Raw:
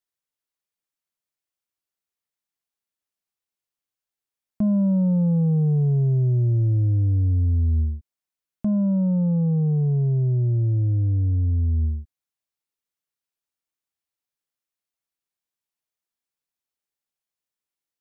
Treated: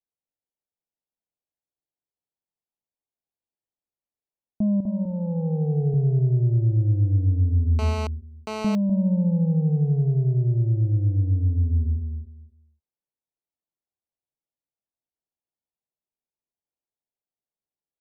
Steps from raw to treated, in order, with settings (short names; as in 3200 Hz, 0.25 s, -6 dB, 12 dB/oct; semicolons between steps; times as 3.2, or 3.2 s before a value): steep low-pass 900 Hz 36 dB/oct; 4.8–5.94 comb 2.5 ms, depth 72%; feedback echo 0.25 s, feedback 20%, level -6 dB; 7.79–8.75 GSM buzz -29 dBFS; gain -1.5 dB